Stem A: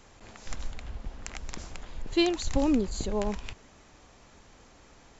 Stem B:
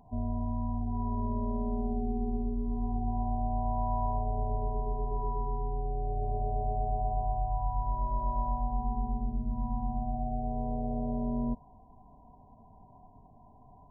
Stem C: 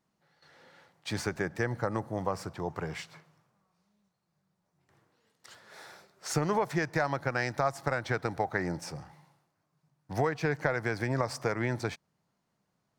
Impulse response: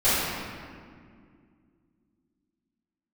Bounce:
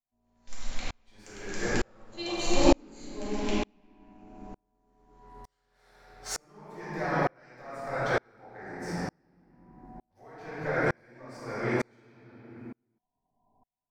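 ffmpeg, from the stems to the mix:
-filter_complex "[0:a]agate=range=-21dB:threshold=-42dB:ratio=16:detection=peak,highshelf=f=2.3k:g=10,volume=-2.5dB,asplit=2[a][b];[b]volume=-8dB[c];[1:a]asoftclip=type=tanh:threshold=-27.5dB,volume=-6dB[d];[2:a]volume=-6.5dB,asplit=2[e][f];[f]volume=-3.5dB[g];[3:a]atrim=start_sample=2205[h];[c][g]amix=inputs=2:normalize=0[i];[i][h]afir=irnorm=-1:irlink=0[j];[a][d][e][j]amix=inputs=4:normalize=0,equalizer=f=60:t=o:w=2.1:g=-12,aeval=exprs='val(0)*pow(10,-39*if(lt(mod(-1.1*n/s,1),2*abs(-1.1)/1000),1-mod(-1.1*n/s,1)/(2*abs(-1.1)/1000),(mod(-1.1*n/s,1)-2*abs(-1.1)/1000)/(1-2*abs(-1.1)/1000))/20)':c=same"

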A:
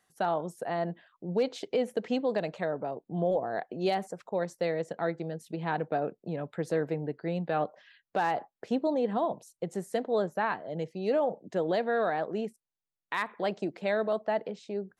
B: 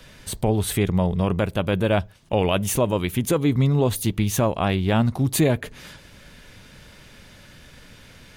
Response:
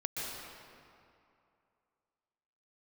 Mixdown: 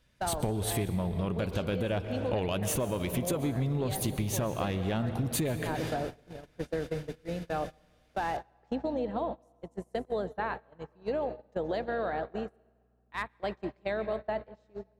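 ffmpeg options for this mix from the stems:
-filter_complex "[0:a]aeval=exprs='val(0)+0.00562*(sin(2*PI*60*n/s)+sin(2*PI*2*60*n/s)/2+sin(2*PI*3*60*n/s)/3+sin(2*PI*4*60*n/s)/4+sin(2*PI*5*60*n/s)/5)':c=same,volume=-4dB,asplit=2[a][b];[b]volume=-10dB[c];[1:a]asoftclip=type=tanh:threshold=-11dB,volume=-1dB,asplit=2[d][e];[e]volume=-11.5dB[f];[2:a]atrim=start_sample=2205[g];[c][f]amix=inputs=2:normalize=0[h];[h][g]afir=irnorm=-1:irlink=0[i];[a][d][i]amix=inputs=3:normalize=0,agate=range=-24dB:threshold=-32dB:ratio=16:detection=peak,acompressor=threshold=-27dB:ratio=10"

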